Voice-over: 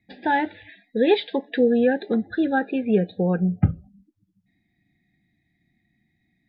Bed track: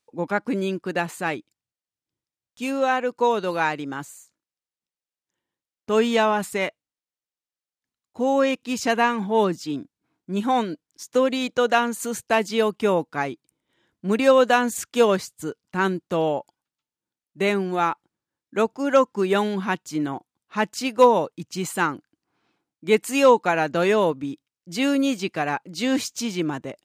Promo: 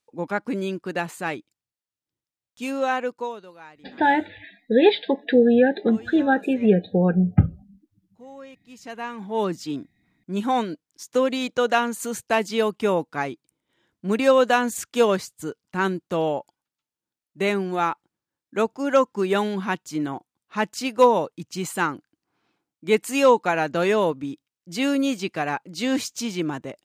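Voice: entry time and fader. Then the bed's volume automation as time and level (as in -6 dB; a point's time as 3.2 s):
3.75 s, +2.5 dB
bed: 3.07 s -2 dB
3.54 s -22 dB
8.6 s -22 dB
9.56 s -1 dB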